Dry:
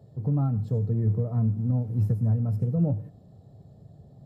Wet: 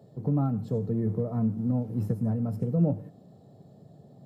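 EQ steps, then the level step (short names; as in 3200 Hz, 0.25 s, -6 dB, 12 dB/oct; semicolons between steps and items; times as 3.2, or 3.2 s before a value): Chebyshev high-pass 210 Hz, order 2; +3.5 dB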